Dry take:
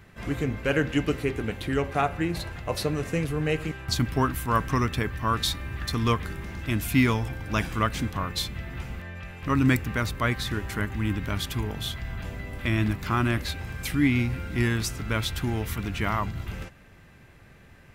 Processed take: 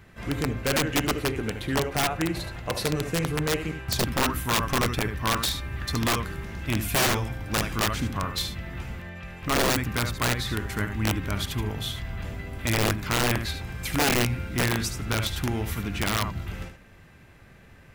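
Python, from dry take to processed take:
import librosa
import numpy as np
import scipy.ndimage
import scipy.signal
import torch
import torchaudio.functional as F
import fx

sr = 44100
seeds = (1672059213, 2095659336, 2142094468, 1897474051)

y = x + 10.0 ** (-8.5 / 20.0) * np.pad(x, (int(74 * sr / 1000.0), 0))[:len(x)]
y = (np.mod(10.0 ** (17.0 / 20.0) * y + 1.0, 2.0) - 1.0) / 10.0 ** (17.0 / 20.0)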